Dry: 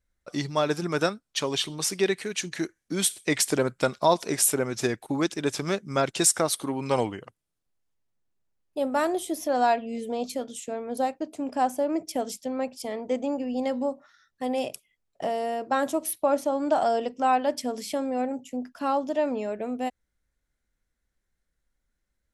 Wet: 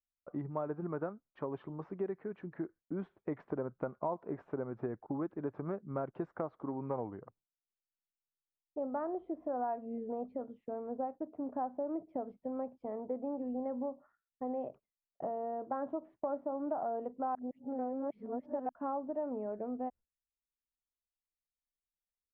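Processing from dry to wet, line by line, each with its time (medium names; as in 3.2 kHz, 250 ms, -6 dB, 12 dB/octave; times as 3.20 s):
17.35–18.69 s: reverse
whole clip: low-pass 1.2 kHz 24 dB/octave; gate with hold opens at -53 dBFS; compression 3:1, threshold -28 dBFS; trim -6.5 dB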